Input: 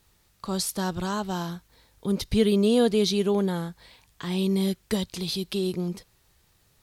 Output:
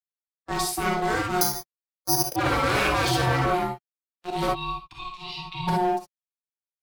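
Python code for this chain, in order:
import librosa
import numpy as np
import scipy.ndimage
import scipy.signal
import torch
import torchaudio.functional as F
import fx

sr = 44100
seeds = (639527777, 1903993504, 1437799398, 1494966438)

p1 = fx.bin_expand(x, sr, power=1.5)
p2 = p1 + fx.room_early_taps(p1, sr, ms=(51, 78), db=(-13.5, -13.0), dry=0)
p3 = fx.auto_swell(p2, sr, attack_ms=134.0)
p4 = fx.level_steps(p3, sr, step_db=9)
p5 = p3 + (p4 * 10.0 ** (-1.5 / 20.0))
p6 = np.sign(p5) * np.maximum(np.abs(p5) - 10.0 ** (-39.0 / 20.0), 0.0)
p7 = fx.hpss(p6, sr, part='harmonic', gain_db=8)
p8 = fx.double_bandpass(p7, sr, hz=1300.0, octaves=2.5, at=(4.47, 5.67), fade=0.02)
p9 = 10.0 ** (-15.0 / 20.0) * (np.abs((p8 / 10.0 ** (-15.0 / 20.0) + 3.0) % 4.0 - 2.0) - 1.0)
p10 = p9 * np.sin(2.0 * np.pi * 540.0 * np.arange(len(p9)) / sr)
p11 = fx.rev_gated(p10, sr, seeds[0], gate_ms=80, shape='rising', drr_db=-1.0)
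p12 = fx.resample_bad(p11, sr, factor=8, down='filtered', up='zero_stuff', at=(1.41, 2.36))
p13 = fx.band_squash(p12, sr, depth_pct=40)
y = p13 * 10.0 ** (-2.0 / 20.0)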